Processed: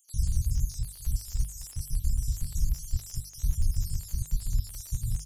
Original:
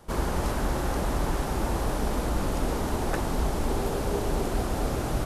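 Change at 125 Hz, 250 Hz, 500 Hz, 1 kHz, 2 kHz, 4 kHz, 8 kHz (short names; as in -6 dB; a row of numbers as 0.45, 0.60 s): -0.5 dB, -17.5 dB, under -35 dB, under -35 dB, -25.5 dB, -7.0 dB, +0.5 dB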